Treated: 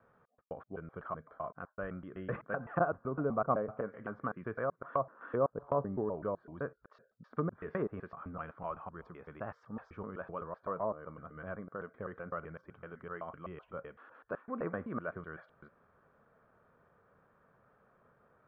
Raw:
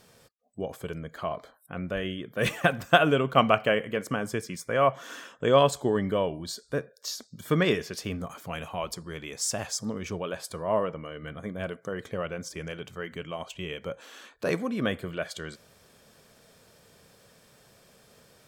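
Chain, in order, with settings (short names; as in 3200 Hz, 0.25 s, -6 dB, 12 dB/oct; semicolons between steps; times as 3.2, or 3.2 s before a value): slices in reverse order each 0.127 s, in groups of 2; ladder low-pass 1500 Hz, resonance 55%; treble ducked by the level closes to 750 Hz, closed at -29.5 dBFS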